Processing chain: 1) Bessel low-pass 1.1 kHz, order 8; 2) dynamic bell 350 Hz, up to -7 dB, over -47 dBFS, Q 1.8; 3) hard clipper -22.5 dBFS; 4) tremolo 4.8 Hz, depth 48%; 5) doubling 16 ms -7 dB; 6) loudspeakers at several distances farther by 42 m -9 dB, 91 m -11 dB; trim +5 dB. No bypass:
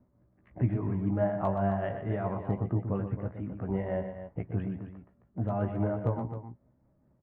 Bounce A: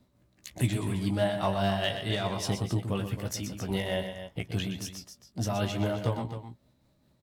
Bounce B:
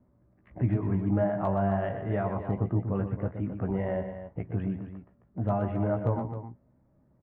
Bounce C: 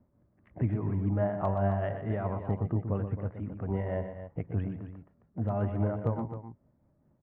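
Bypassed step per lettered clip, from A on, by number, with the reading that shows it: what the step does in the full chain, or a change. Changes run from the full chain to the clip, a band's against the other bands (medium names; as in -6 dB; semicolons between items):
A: 1, momentary loudness spread change +1 LU; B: 4, loudness change +2.0 LU; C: 5, 125 Hz band +2.0 dB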